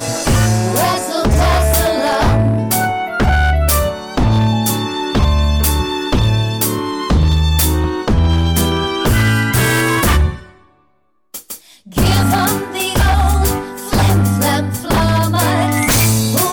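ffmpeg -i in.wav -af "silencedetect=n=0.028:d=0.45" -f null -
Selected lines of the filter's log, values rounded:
silence_start: 10.46
silence_end: 11.34 | silence_duration: 0.88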